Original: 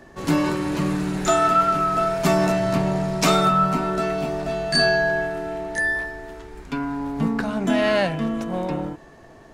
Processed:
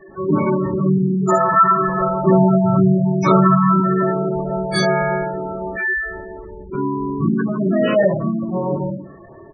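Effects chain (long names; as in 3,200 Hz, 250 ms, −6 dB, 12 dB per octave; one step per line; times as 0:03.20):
pitch-shifted copies added −5 semitones −11 dB, −3 semitones −15 dB, +5 semitones −12 dB
convolution reverb RT60 0.50 s, pre-delay 3 ms, DRR −8 dB
gate on every frequency bin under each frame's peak −15 dB strong
level −5 dB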